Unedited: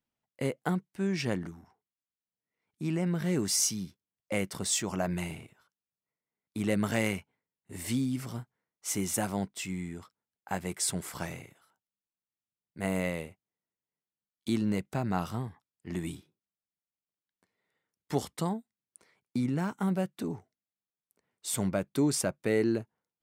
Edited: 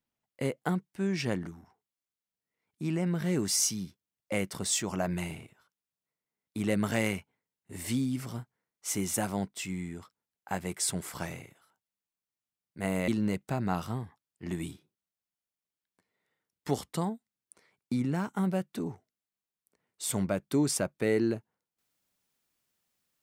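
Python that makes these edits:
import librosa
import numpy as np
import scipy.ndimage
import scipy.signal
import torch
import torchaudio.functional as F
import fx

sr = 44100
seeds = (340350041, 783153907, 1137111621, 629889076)

y = fx.edit(x, sr, fx.cut(start_s=13.08, length_s=1.44), tone=tone)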